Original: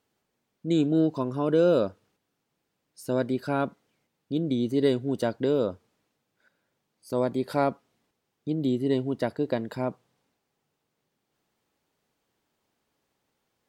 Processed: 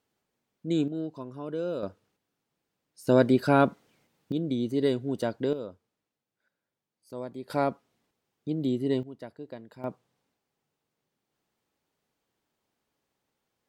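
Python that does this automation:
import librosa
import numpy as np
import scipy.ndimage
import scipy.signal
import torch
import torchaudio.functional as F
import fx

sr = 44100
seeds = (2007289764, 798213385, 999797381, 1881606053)

y = fx.gain(x, sr, db=fx.steps((0.0, -3.0), (0.88, -11.0), (1.83, -3.5), (3.07, 6.0), (4.32, -2.5), (5.53, -11.5), (7.5, -2.0), (9.03, -14.5), (9.84, -4.0)))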